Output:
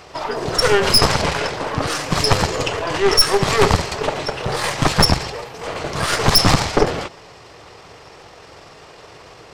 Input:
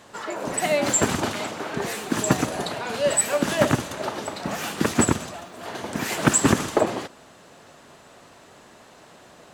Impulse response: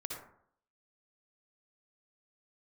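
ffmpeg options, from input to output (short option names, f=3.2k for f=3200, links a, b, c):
-af "asetrate=30296,aresample=44100,atempo=1.45565,equalizer=f=230:t=o:w=0.96:g=-12.5,aeval=exprs='0.562*(cos(1*acos(clip(val(0)/0.562,-1,1)))-cos(1*PI/2))+0.282*(cos(5*acos(clip(val(0)/0.562,-1,1)))-cos(5*PI/2))+0.2*(cos(8*acos(clip(val(0)/0.562,-1,1)))-cos(8*PI/2))':c=same,volume=-1dB"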